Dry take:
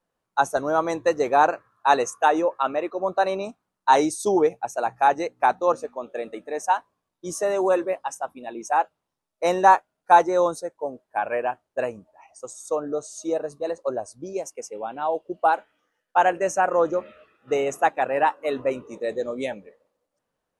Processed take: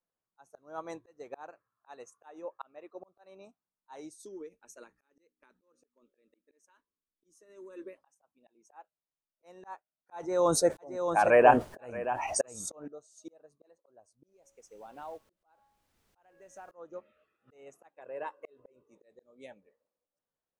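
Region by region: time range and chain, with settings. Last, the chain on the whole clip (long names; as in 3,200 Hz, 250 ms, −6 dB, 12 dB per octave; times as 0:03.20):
0:04.25–0:07.98: low-shelf EQ 160 Hz +7 dB + downward compressor 16 to 1, threshold −25 dBFS + phaser with its sweep stopped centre 310 Hz, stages 4
0:10.16–0:12.88: low-shelf EQ 120 Hz +9 dB + single-tap delay 623 ms −7.5 dB + envelope flattener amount 70%
0:14.27–0:16.71: hum removal 276.7 Hz, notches 40 + downward compressor 4 to 1, threshold −31 dBFS + background noise pink −56 dBFS
0:17.94–0:18.84: dynamic equaliser 360 Hz, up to +8 dB, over −37 dBFS, Q 0.98 + comb filter 1.9 ms, depth 49% + downward compressor 3 to 1, threshold −23 dBFS
whole clip: volume swells 774 ms; expander for the loud parts 1.5 to 1, over −45 dBFS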